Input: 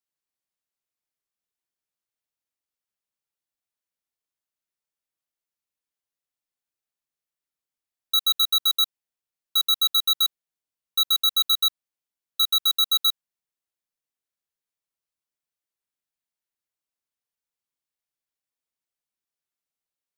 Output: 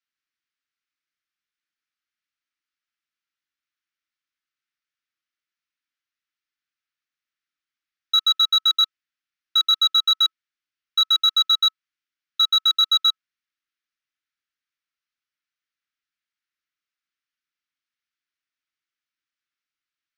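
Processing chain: FFT filter 190 Hz 0 dB, 330 Hz +6 dB, 480 Hz -20 dB, 770 Hz -14 dB, 1.3 kHz +14 dB, 2.1 kHz +14 dB, 5.8 kHz +7 dB, 9.6 kHz -12 dB; trim -6 dB

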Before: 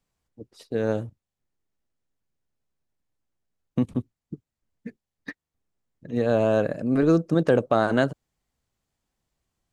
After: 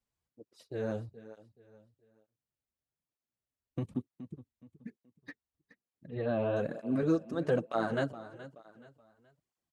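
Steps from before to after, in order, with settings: 6.08–6.57 s: steep low-pass 3.9 kHz 36 dB/octave; feedback delay 423 ms, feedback 34%, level -15.5 dB; cancelling through-zero flanger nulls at 1.1 Hz, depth 7.1 ms; trim -7 dB

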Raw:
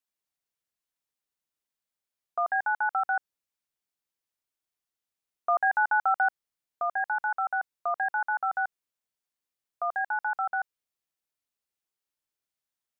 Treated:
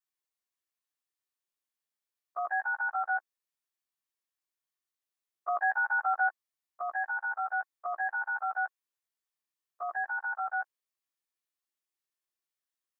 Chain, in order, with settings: short-time spectra conjugated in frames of 34 ms; bass shelf 450 Hz -9.5 dB; small resonant body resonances 340/1100/1800 Hz, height 7 dB

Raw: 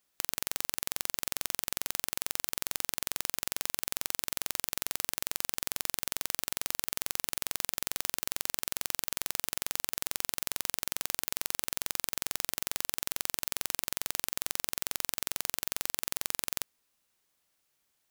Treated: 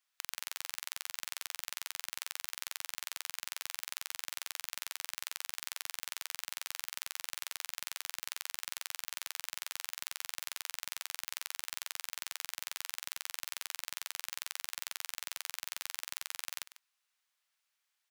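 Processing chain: high-pass 1.2 kHz 12 dB/octave; treble shelf 6.1 kHz -9.5 dB; on a send: delay 146 ms -15.5 dB; on the sum: trim -1 dB

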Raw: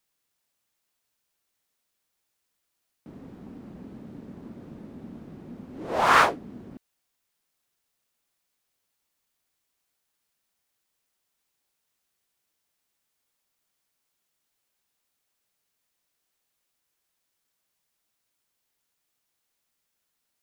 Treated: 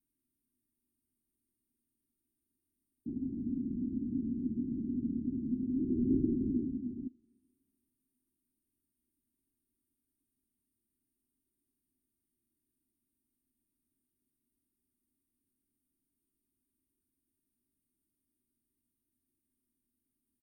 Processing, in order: brick-wall FIR band-stop 410–8600 Hz; static phaser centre 2.9 kHz, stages 8; delay 302 ms -4.5 dB; two-slope reverb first 0.26 s, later 2.2 s, from -18 dB, DRR 20 dB; low-pass that closes with the level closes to 340 Hz, closed at -42 dBFS; comb 2.8 ms, depth 45%; small resonant body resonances 250/800 Hz, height 13 dB; trim +1.5 dB

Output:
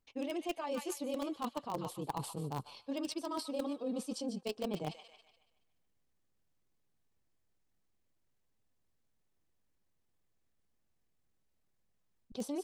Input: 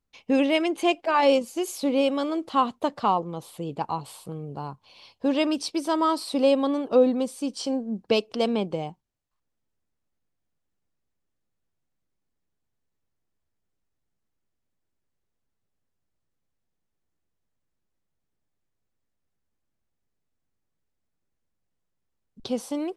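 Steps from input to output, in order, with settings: band-stop 1.4 kHz, Q 23; feedback echo behind a high-pass 257 ms, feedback 42%, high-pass 1.6 kHz, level -9.5 dB; reverse; compression 10:1, threshold -35 dBFS, peak gain reduction 21.5 dB; reverse; granular stretch 0.55×, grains 50 ms; in parallel at -9.5 dB: bit crusher 5-bit; on the sum: dynamic bell 1.9 kHz, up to -5 dB, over -57 dBFS, Q 1; trim +1.5 dB

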